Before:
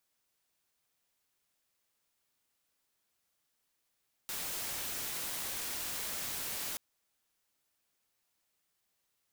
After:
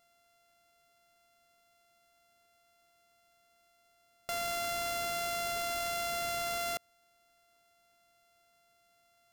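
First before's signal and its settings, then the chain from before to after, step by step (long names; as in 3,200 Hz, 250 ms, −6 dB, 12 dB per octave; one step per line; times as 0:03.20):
noise white, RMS −38.5 dBFS 2.48 s
samples sorted by size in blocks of 64 samples
in parallel at +0.5 dB: compressor whose output falls as the input rises −45 dBFS, ratio −1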